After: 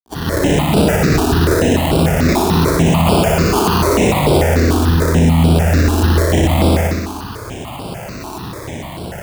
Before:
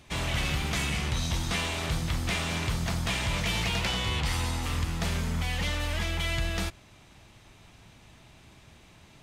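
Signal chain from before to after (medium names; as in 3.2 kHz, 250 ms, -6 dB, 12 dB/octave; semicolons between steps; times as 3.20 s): fade-in on the opening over 1.07 s; in parallel at -2 dB: compression, threshold -43 dBFS, peak gain reduction 17.5 dB; on the sum: decimation with a swept rate 32×, swing 60% 0.23 Hz; dynamic bell 300 Hz, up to +4 dB, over -43 dBFS, Q 0.77; companded quantiser 6-bit; high-pass 120 Hz 6 dB/octave; bass shelf 220 Hz -4 dB; on a send: flutter echo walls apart 10.4 m, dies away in 1.2 s; on the sum: loudness maximiser +26 dB; stepped phaser 6.8 Hz 540–6400 Hz; trim -1.5 dB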